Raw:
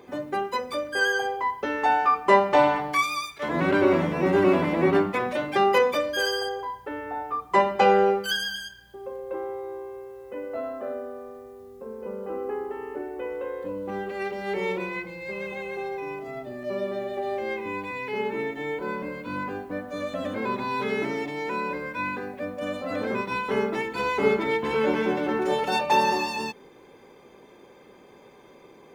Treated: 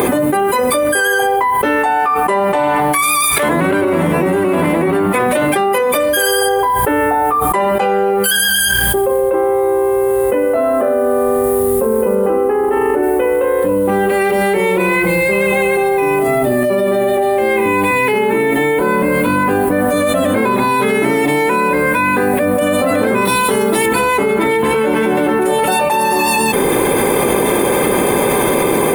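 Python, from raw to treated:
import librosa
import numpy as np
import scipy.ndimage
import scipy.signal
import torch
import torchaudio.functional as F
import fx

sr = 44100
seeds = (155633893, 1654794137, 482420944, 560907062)

y = fx.high_shelf(x, sr, hz=8700.0, db=-6.0, at=(9.21, 11.44))
y = fx.high_shelf(y, sr, hz=8500.0, db=-9.0, at=(12.15, 13.03))
y = fx.high_shelf_res(y, sr, hz=3000.0, db=7.5, q=1.5, at=(23.25, 23.86))
y = fx.high_shelf_res(y, sr, hz=7600.0, db=11.0, q=3.0)
y = fx.env_flatten(y, sr, amount_pct=100)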